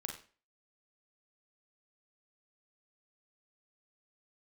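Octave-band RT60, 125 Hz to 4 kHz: 0.35, 0.40, 0.40, 0.35, 0.40, 0.35 seconds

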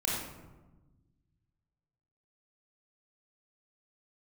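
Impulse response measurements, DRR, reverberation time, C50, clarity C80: −5.0 dB, 1.2 s, −0.5 dB, 2.5 dB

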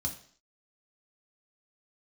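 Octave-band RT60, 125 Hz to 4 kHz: 0.45, 0.55, 0.55, 0.50, 0.55, 0.60 seconds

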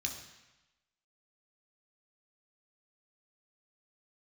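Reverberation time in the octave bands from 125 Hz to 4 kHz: 1.0, 1.0, 0.95, 1.1, 1.1, 1.0 seconds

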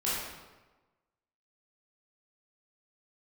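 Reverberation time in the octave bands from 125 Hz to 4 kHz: 1.2, 1.2, 1.2, 1.2, 1.0, 0.85 seconds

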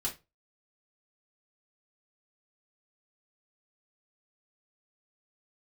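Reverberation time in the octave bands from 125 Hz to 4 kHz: 0.35, 0.25, 0.25, 0.20, 0.20, 0.20 seconds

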